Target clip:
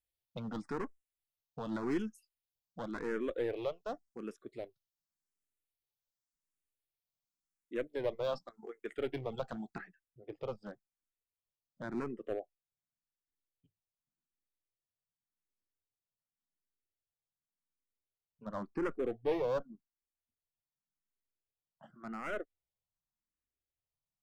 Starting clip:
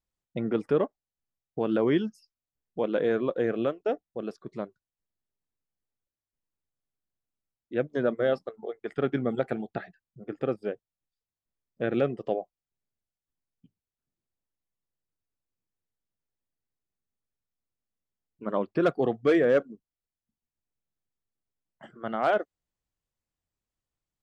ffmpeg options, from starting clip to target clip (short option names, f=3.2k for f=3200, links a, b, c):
-filter_complex "[0:a]asetnsamples=n=441:p=0,asendcmd='9.81 highshelf g 2;11.88 highshelf g -5.5',highshelf=f=2.5k:g=9,aeval=exprs='clip(val(0),-1,0.0562)':c=same,asplit=2[a][b];[b]afreqshift=0.89[c];[a][c]amix=inputs=2:normalize=1,volume=-6dB"